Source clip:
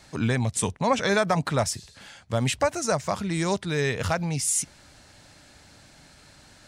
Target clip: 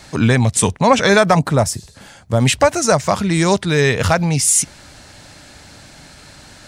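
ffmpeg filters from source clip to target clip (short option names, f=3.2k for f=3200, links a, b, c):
-filter_complex "[0:a]asettb=1/sr,asplit=3[a][b][c];[a]atrim=end=1.394[d];[b]atrim=start=1.39:end=2.4,asetpts=PTS-STARTPTS,afade=t=in:d=0.004:c=qsin,afade=t=out:st=1.006:d=0.004:c=qsin,equalizer=f=2.9k:w=0.47:g=-9[e];[c]atrim=start=2.396[f];[d][e]acrossfade=d=0.004:c1=hsin:c2=qsin[g];[g][f]acrossfade=d=0.004:c1=qsin:c2=hsin,acontrast=79,volume=4dB"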